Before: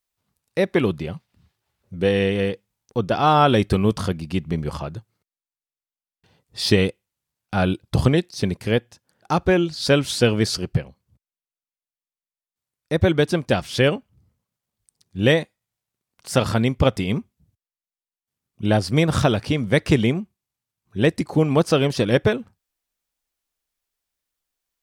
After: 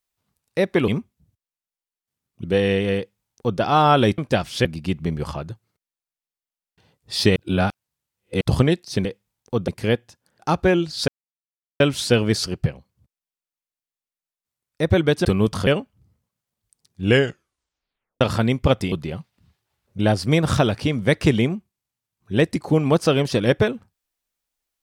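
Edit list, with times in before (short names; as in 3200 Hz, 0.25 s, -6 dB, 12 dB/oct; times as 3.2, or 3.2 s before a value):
0.88–1.95 swap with 17.08–18.64
2.48–3.11 copy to 8.51
3.69–4.11 swap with 13.36–13.83
6.82–7.87 reverse
9.91 insert silence 0.72 s
15.18 tape stop 1.19 s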